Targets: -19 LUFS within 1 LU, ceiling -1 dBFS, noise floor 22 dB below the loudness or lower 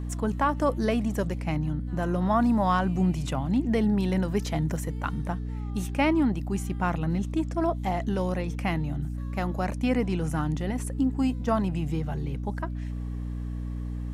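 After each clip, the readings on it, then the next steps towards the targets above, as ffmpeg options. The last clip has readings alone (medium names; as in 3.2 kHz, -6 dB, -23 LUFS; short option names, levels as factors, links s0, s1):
hum 60 Hz; highest harmonic 300 Hz; hum level -30 dBFS; loudness -28.0 LUFS; peak level -11.5 dBFS; loudness target -19.0 LUFS
-> -af "bandreject=f=60:t=h:w=4,bandreject=f=120:t=h:w=4,bandreject=f=180:t=h:w=4,bandreject=f=240:t=h:w=4,bandreject=f=300:t=h:w=4"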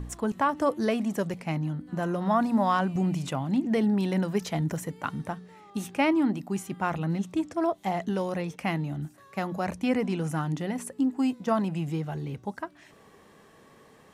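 hum not found; loudness -28.5 LUFS; peak level -13.0 dBFS; loudness target -19.0 LUFS
-> -af "volume=2.99"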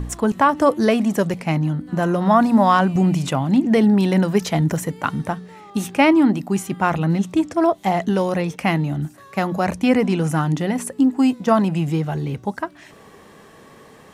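loudness -19.0 LUFS; peak level -3.5 dBFS; noise floor -46 dBFS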